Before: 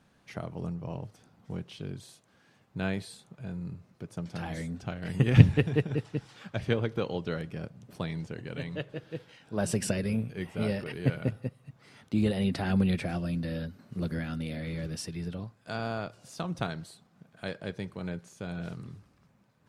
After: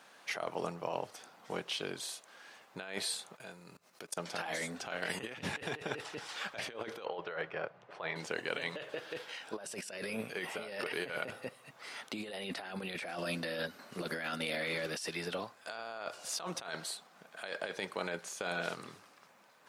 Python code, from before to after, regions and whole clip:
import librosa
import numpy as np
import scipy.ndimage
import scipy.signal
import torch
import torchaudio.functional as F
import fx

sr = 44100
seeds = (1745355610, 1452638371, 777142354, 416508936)

y = fx.chain(x, sr, fx.high_shelf(hz=4200.0, db=9.5),
    fx.level_steps(step_db=23), at=(3.36, 4.17))
y = fx.chain(y, sr, fx.lowpass(hz=2000.0, slope=12),
    fx.peak_eq(hz=240.0, db=-15.0, octaves=0.62), at=(7.05, 8.16))
y = scipy.signal.sosfilt(scipy.signal.butter(2, 610.0, 'highpass', fs=sr, output='sos'), y)
y = fx.over_compress(y, sr, threshold_db=-46.0, ratio=-1.0)
y = y * librosa.db_to_amplitude(6.5)